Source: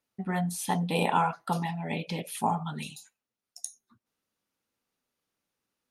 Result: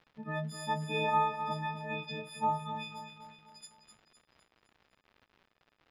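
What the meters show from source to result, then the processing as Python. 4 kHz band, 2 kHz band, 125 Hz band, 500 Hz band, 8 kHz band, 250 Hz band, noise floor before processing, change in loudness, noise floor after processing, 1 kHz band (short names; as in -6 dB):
-3.0 dB, -2.0 dB, -7.5 dB, -3.5 dB, -14.0 dB, -10.0 dB, under -85 dBFS, -3.5 dB, -77 dBFS, -2.5 dB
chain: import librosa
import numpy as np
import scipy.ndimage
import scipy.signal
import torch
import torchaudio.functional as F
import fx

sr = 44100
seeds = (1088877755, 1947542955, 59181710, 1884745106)

y = fx.freq_snap(x, sr, grid_st=6)
y = fx.bass_treble(y, sr, bass_db=-2, treble_db=6)
y = fx.echo_feedback(y, sr, ms=255, feedback_pct=48, wet_db=-9)
y = fx.dmg_crackle(y, sr, seeds[0], per_s=180.0, level_db=-37.0)
y = fx.air_absorb(y, sr, metres=310.0)
y = F.gain(torch.from_numpy(y), -6.5).numpy()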